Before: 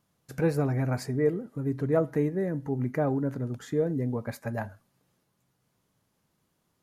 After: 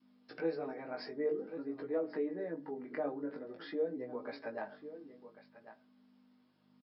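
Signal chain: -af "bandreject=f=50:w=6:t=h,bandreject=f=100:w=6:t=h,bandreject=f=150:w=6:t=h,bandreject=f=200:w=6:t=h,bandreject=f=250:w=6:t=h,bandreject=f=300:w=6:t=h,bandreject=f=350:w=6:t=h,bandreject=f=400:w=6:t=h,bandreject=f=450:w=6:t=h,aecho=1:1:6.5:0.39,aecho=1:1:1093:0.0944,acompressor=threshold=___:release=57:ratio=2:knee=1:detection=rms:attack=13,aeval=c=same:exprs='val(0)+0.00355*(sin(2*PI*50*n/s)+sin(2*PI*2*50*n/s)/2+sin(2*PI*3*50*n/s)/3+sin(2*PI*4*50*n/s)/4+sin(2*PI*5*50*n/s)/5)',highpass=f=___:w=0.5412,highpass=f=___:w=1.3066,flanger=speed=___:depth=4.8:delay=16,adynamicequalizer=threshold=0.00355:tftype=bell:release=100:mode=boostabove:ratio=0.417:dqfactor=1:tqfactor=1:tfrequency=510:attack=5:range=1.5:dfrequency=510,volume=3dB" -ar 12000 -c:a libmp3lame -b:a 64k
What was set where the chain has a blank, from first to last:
-44dB, 260, 260, 0.49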